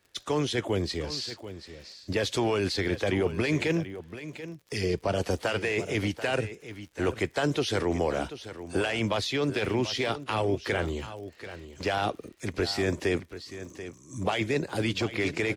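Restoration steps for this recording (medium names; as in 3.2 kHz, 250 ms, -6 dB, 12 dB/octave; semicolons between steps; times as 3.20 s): clip repair -16.5 dBFS; de-click; inverse comb 736 ms -13 dB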